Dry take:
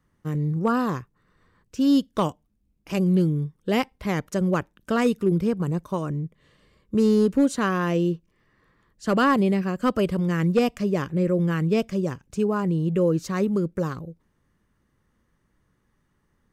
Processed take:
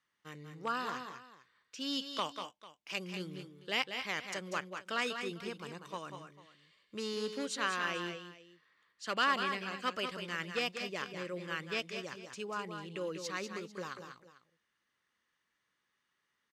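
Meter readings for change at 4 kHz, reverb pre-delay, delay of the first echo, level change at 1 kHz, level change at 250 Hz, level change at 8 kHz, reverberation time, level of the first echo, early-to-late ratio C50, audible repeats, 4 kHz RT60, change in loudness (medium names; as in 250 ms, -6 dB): +0.5 dB, no reverb, 192 ms, -8.5 dB, -22.0 dB, -5.5 dB, no reverb, -7.5 dB, no reverb, 2, no reverb, -13.5 dB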